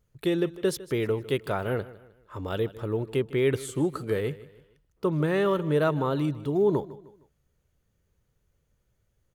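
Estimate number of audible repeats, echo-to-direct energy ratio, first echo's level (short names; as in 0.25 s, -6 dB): 3, -17.5 dB, -18.0 dB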